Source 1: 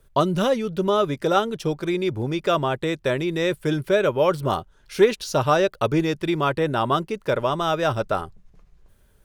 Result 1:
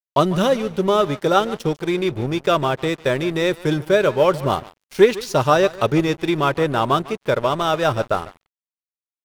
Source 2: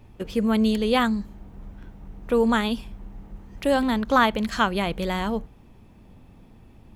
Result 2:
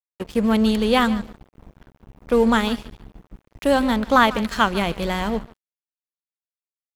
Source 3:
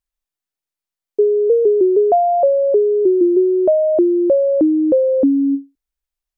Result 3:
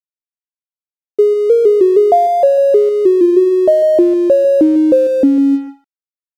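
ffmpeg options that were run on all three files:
-af "aecho=1:1:148|296|444:0.158|0.0444|0.0124,aeval=exprs='sgn(val(0))*max(abs(val(0))-0.0126,0)':c=same,volume=1.58"

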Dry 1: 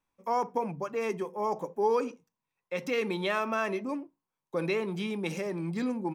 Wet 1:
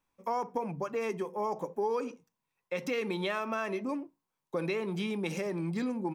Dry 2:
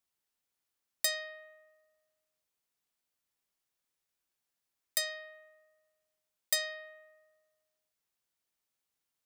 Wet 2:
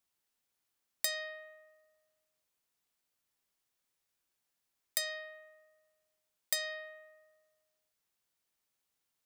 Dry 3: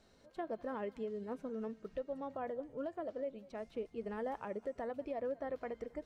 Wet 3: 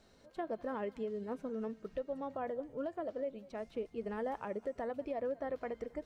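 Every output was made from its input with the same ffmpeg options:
-af "acompressor=threshold=0.0224:ratio=2.5,volume=1.26"

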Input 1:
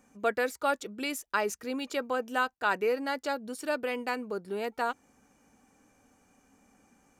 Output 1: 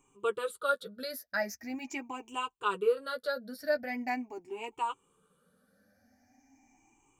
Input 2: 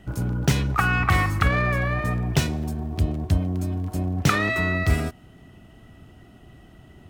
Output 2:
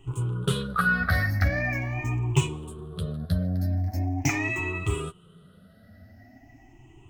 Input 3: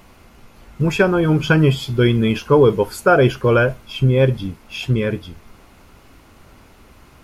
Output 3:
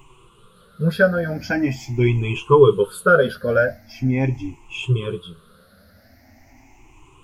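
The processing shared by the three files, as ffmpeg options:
-af "afftfilt=real='re*pow(10,21/40*sin(2*PI*(0.68*log(max(b,1)*sr/1024/100)/log(2)-(0.42)*(pts-256)/sr)))':imag='im*pow(10,21/40*sin(2*PI*(0.68*log(max(b,1)*sr/1024/100)/log(2)-(0.42)*(pts-256)/sr)))':win_size=1024:overlap=0.75,flanger=delay=7.1:depth=5.3:regen=-18:speed=0.46:shape=triangular,volume=0.562"

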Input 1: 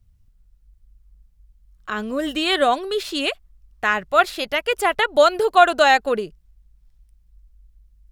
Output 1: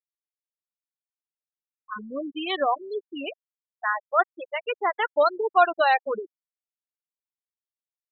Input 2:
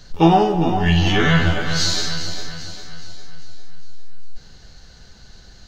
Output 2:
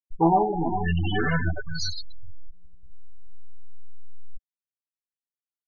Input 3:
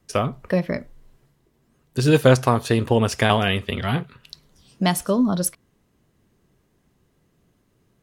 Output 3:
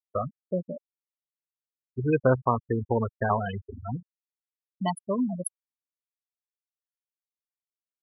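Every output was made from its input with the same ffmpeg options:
-af "equalizer=f=160:t=o:w=0.67:g=-3,equalizer=f=1000:t=o:w=0.67:g=5,equalizer=f=6300:t=o:w=0.67:g=3,afftfilt=real='re*gte(hypot(re,im),0.316)':imag='im*gte(hypot(re,im),0.316)':win_size=1024:overlap=0.75,volume=0.447"

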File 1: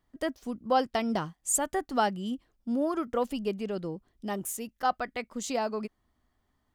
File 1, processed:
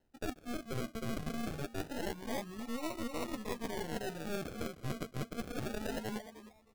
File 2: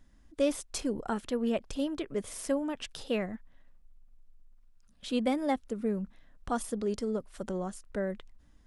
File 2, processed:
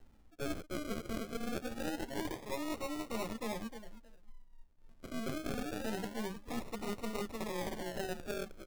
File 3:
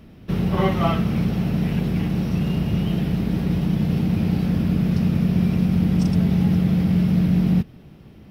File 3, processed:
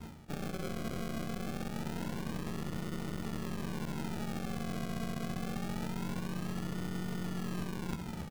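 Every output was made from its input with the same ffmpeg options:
-filter_complex "[0:a]highshelf=f=4700:g=6,asplit=2[s0][s1];[s1]adelay=13,volume=0.631[s2];[s0][s2]amix=inputs=2:normalize=0,acrossover=split=170|1200[s3][s4][s5];[s3]acompressor=threshold=0.02:ratio=4[s6];[s4]acompressor=threshold=0.0631:ratio=4[s7];[s5]acompressor=threshold=0.00794:ratio=4[s8];[s6][s7][s8]amix=inputs=3:normalize=0,aecho=1:1:311|622|933:0.668|0.114|0.0193,acrusher=samples=38:mix=1:aa=0.000001:lfo=1:lforange=22.8:lforate=0.25,aeval=exprs='0.316*(cos(1*acos(clip(val(0)/0.316,-1,1)))-cos(1*PI/2))+0.0316*(cos(3*acos(clip(val(0)/0.316,-1,1)))-cos(3*PI/2))+0.0355*(cos(8*acos(clip(val(0)/0.316,-1,1)))-cos(8*PI/2))':c=same,areverse,acompressor=threshold=0.0158:ratio=8,areverse,volume=1.26"

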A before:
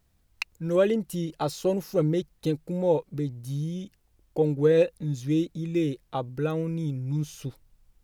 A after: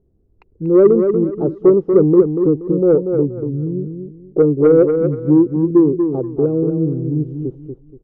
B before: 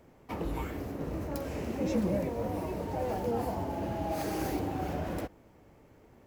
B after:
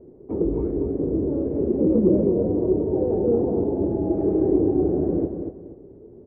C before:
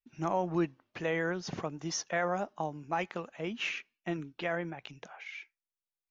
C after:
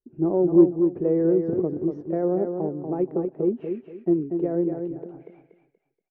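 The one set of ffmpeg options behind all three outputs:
-af "lowpass=f=390:t=q:w=4.7,acontrast=53,aecho=1:1:238|476|714|952:0.473|0.132|0.0371|0.0104"

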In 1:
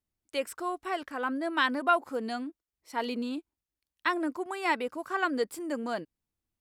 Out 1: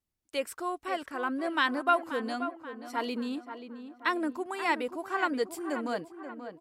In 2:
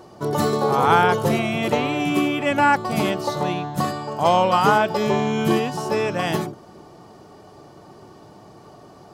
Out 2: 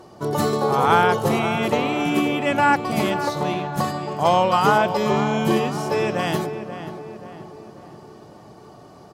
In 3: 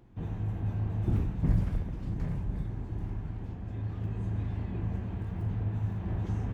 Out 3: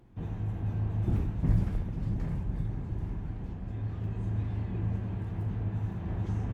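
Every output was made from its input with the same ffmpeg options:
-filter_complex "[0:a]asplit=2[s0][s1];[s1]adelay=532,lowpass=f=2200:p=1,volume=0.316,asplit=2[s2][s3];[s3]adelay=532,lowpass=f=2200:p=1,volume=0.51,asplit=2[s4][s5];[s5]adelay=532,lowpass=f=2200:p=1,volume=0.51,asplit=2[s6][s7];[s7]adelay=532,lowpass=f=2200:p=1,volume=0.51,asplit=2[s8][s9];[s9]adelay=532,lowpass=f=2200:p=1,volume=0.51,asplit=2[s10][s11];[s11]adelay=532,lowpass=f=2200:p=1,volume=0.51[s12];[s0][s2][s4][s6][s8][s10][s12]amix=inputs=7:normalize=0" -ar 44100 -c:a libmp3lame -b:a 80k

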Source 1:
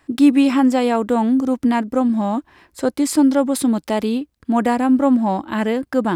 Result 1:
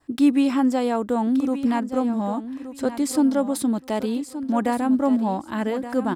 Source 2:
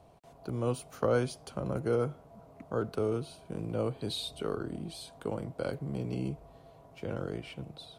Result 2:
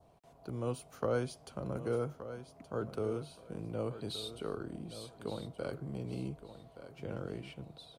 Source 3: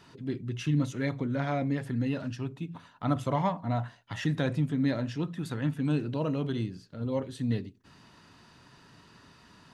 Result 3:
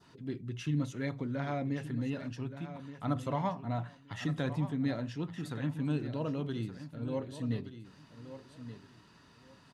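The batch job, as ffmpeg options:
-af "adynamicequalizer=threshold=0.00708:dfrequency=2400:dqfactor=1.7:tfrequency=2400:tqfactor=1.7:attack=5:release=100:ratio=0.375:range=3:mode=cutabove:tftype=bell,aecho=1:1:1173|2346|3519:0.251|0.0527|0.0111,volume=0.562"

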